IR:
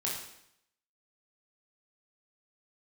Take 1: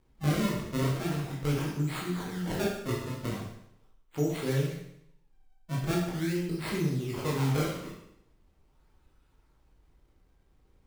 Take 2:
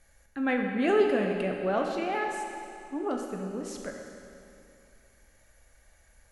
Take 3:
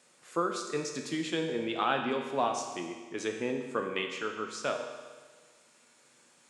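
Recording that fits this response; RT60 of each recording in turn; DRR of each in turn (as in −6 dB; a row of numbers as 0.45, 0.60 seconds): 1; 0.75, 2.6, 1.5 seconds; −4.5, 1.5, 2.5 decibels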